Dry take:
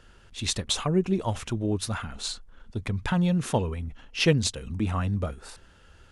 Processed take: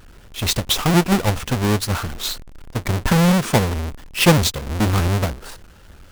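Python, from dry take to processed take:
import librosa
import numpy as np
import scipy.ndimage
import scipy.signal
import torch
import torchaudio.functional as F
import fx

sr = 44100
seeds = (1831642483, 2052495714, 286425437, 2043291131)

y = fx.halfwave_hold(x, sr)
y = fx.vibrato_shape(y, sr, shape='saw_up', rate_hz=3.2, depth_cents=160.0)
y = F.gain(torch.from_numpy(y), 4.5).numpy()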